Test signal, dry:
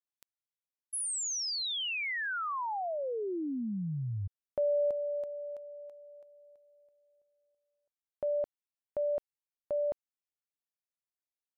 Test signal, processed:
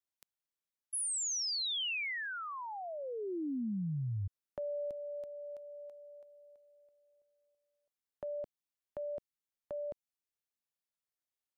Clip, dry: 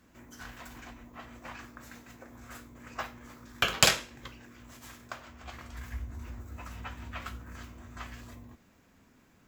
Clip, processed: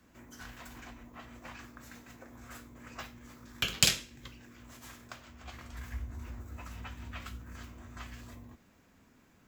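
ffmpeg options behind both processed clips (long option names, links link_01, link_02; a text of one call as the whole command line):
ffmpeg -i in.wav -filter_complex "[0:a]acrossover=split=350|2200[link_01][link_02][link_03];[link_02]acompressor=threshold=-44dB:ratio=2.5:attack=2.6:release=954:knee=2.83:detection=peak[link_04];[link_01][link_04][link_03]amix=inputs=3:normalize=0,volume=-1dB" out.wav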